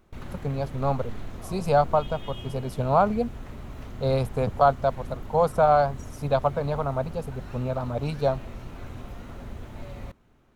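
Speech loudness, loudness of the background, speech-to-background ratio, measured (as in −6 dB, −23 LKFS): −26.0 LKFS, −41.0 LKFS, 15.0 dB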